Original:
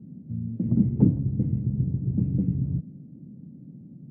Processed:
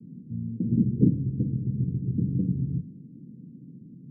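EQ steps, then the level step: high-pass 96 Hz; steep low-pass 510 Hz 96 dB/octave; hum notches 50/100/150/200 Hz; 0.0 dB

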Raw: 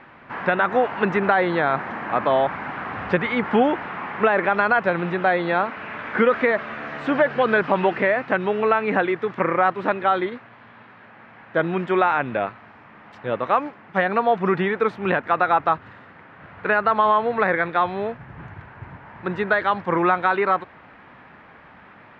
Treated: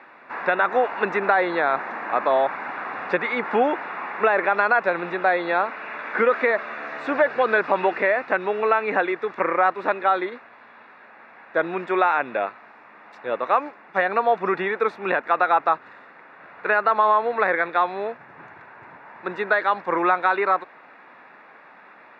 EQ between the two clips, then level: high-pass 360 Hz 12 dB/octave; Butterworth band-stop 3.1 kHz, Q 7.1; 0.0 dB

